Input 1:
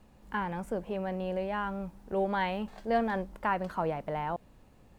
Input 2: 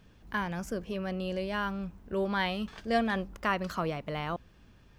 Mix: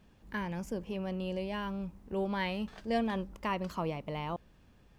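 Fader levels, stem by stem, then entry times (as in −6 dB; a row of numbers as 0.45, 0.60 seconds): −8.0, −5.5 decibels; 0.00, 0.00 seconds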